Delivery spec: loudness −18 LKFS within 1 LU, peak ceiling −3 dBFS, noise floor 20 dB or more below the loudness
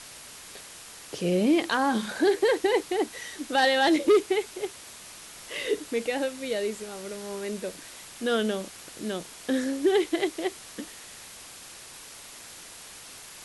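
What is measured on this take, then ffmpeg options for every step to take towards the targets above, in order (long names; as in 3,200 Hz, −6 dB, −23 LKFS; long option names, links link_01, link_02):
background noise floor −46 dBFS; target noise floor −47 dBFS; integrated loudness −27.0 LKFS; sample peak −12.5 dBFS; target loudness −18.0 LKFS
→ -af "afftdn=noise_reduction=6:noise_floor=-46"
-af "volume=9dB"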